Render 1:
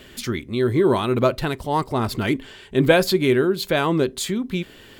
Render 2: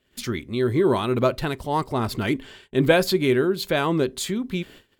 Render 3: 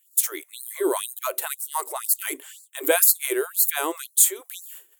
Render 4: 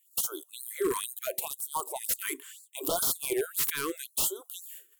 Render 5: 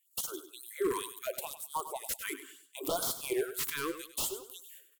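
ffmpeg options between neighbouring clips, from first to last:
ffmpeg -i in.wav -af "agate=range=-24dB:threshold=-42dB:ratio=16:detection=peak,volume=-2dB" out.wav
ffmpeg -i in.wav -af "aexciter=amount=13.1:drive=5.5:freq=7000,afftfilt=real='re*gte(b*sr/1024,270*pow(4100/270,0.5+0.5*sin(2*PI*2*pts/sr)))':imag='im*gte(b*sr/1024,270*pow(4100/270,0.5+0.5*sin(2*PI*2*pts/sr)))':win_size=1024:overlap=0.75,volume=-2.5dB" out.wav
ffmpeg -i in.wav -af "aeval=exprs='0.133*(abs(mod(val(0)/0.133+3,4)-2)-1)':channel_layout=same,afftfilt=real='re*(1-between(b*sr/1024,650*pow(2200/650,0.5+0.5*sin(2*PI*0.74*pts/sr))/1.41,650*pow(2200/650,0.5+0.5*sin(2*PI*0.74*pts/sr))*1.41))':imag='im*(1-between(b*sr/1024,650*pow(2200/650,0.5+0.5*sin(2*PI*0.74*pts/sr))/1.41,650*pow(2200/650,0.5+0.5*sin(2*PI*0.74*pts/sr))*1.41))':win_size=1024:overlap=0.75,volume=-4dB" out.wav
ffmpeg -i in.wav -filter_complex "[0:a]asplit=2[link_01][link_02];[link_02]adynamicsmooth=sensitivity=5:basefreq=5100,volume=-2.5dB[link_03];[link_01][link_03]amix=inputs=2:normalize=0,aecho=1:1:100|200|300:0.251|0.0728|0.0211,volume=-7dB" out.wav

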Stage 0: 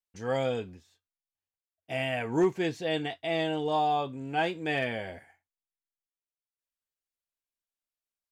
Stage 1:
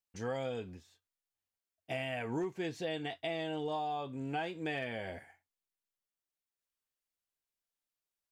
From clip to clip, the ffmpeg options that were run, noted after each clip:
ffmpeg -i in.wav -af "acompressor=threshold=-34dB:ratio=6" out.wav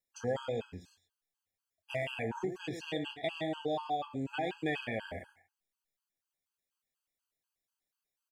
ffmpeg -i in.wav -af "flanger=delay=8.7:depth=2.9:regen=-71:speed=0.43:shape=triangular,aecho=1:1:110:0.251,afftfilt=real='re*gt(sin(2*PI*4.1*pts/sr)*(1-2*mod(floor(b*sr/1024/830),2)),0)':imag='im*gt(sin(2*PI*4.1*pts/sr)*(1-2*mod(floor(b*sr/1024/830),2)),0)':win_size=1024:overlap=0.75,volume=8.5dB" out.wav

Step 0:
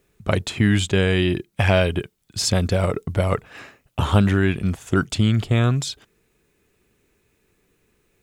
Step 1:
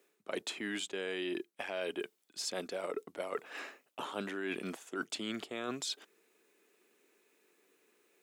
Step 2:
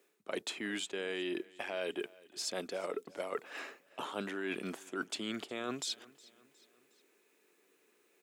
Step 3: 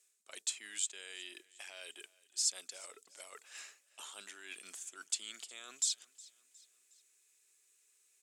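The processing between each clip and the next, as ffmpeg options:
ffmpeg -i in.wav -af "highpass=frequency=290:width=0.5412,highpass=frequency=290:width=1.3066,areverse,acompressor=threshold=-31dB:ratio=12,areverse,volume=-3.5dB" out.wav
ffmpeg -i in.wav -af "aecho=1:1:362|724|1086:0.075|0.036|0.0173" out.wav
ffmpeg -i in.wav -af "bandpass=frequency=7800:width_type=q:width=2.2:csg=0,volume=11dB" out.wav

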